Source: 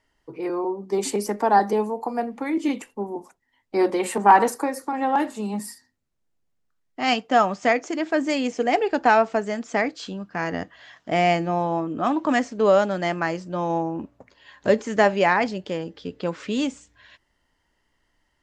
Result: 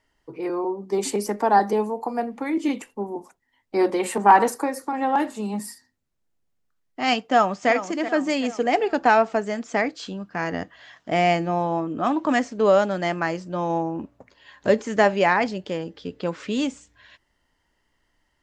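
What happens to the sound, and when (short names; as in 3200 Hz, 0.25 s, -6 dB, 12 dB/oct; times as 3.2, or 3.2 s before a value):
7.26–7.7 echo throw 0.38 s, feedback 50%, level -11.5 dB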